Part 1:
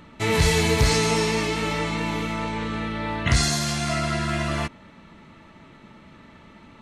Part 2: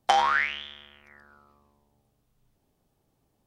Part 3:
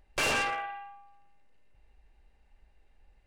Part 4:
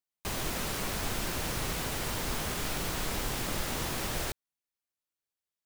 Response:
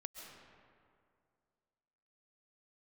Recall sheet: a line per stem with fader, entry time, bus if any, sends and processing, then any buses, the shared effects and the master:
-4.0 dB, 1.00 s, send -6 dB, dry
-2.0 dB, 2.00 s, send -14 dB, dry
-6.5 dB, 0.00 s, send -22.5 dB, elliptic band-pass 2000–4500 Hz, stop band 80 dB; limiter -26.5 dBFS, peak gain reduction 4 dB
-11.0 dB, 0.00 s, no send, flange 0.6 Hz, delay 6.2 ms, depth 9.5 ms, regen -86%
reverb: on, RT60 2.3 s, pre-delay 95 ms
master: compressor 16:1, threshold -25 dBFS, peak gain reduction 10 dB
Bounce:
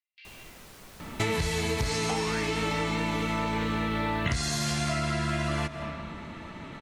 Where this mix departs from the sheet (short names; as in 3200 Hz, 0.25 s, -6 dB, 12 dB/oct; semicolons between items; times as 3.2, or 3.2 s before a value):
stem 1 -4.0 dB -> +4.5 dB; stem 3 -6.5 dB -> -17.5 dB